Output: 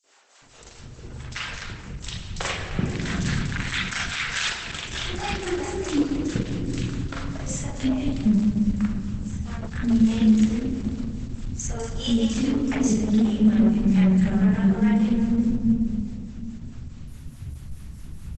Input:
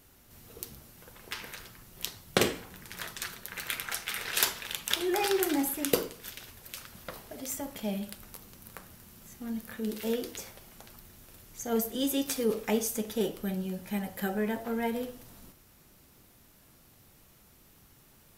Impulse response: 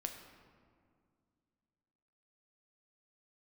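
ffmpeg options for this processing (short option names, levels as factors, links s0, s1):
-filter_complex "[0:a]asplit=2[s0][s1];[s1]aeval=exprs='sgn(val(0))*max(abs(val(0))-0.00562,0)':c=same,volume=0.596[s2];[s0][s2]amix=inputs=2:normalize=0,asplit=3[s3][s4][s5];[s3]afade=t=out:st=3.32:d=0.02[s6];[s4]asplit=2[s7][s8];[s8]highpass=f=720:p=1,volume=3.16,asoftclip=type=tanh:threshold=1[s9];[s7][s9]amix=inputs=2:normalize=0,lowpass=f=7500:p=1,volume=0.501,afade=t=in:st=3.32:d=0.02,afade=t=out:st=4.44:d=0.02[s10];[s5]afade=t=in:st=4.44:d=0.02[s11];[s6][s10][s11]amix=inputs=3:normalize=0,acrossover=split=620[s12][s13];[s12]aeval=exprs='val(0)*(1-0.7/2+0.7/2*cos(2*PI*4.7*n/s))':c=same[s14];[s13]aeval=exprs='val(0)*(1-0.7/2-0.7/2*cos(2*PI*4.7*n/s))':c=same[s15];[s14][s15]amix=inputs=2:normalize=0,acontrast=58,asplit=3[s16][s17][s18];[s16]afade=t=out:st=13.01:d=0.02[s19];[s17]equalizer=f=470:w=2.4:g=-4.5,afade=t=in:st=13.01:d=0.02,afade=t=out:st=13.45:d=0.02[s20];[s18]afade=t=in:st=13.45:d=0.02[s21];[s19][s20][s21]amix=inputs=3:normalize=0,asplit=2[s22][s23];[1:a]atrim=start_sample=2205,adelay=42[s24];[s23][s24]afir=irnorm=-1:irlink=0,volume=1.58[s25];[s22][s25]amix=inputs=2:normalize=0,acompressor=threshold=0.0501:ratio=2.5,asubboost=boost=9.5:cutoff=160,asoftclip=type=hard:threshold=0.178,flanger=delay=7.5:depth=7.2:regen=75:speed=0.14:shape=sinusoidal,acrossover=split=460|4600[s26][s27][s28];[s27]adelay=40[s29];[s26]adelay=420[s30];[s30][s29][s28]amix=inputs=3:normalize=0,volume=2.11" -ar 48000 -c:a libopus -b:a 12k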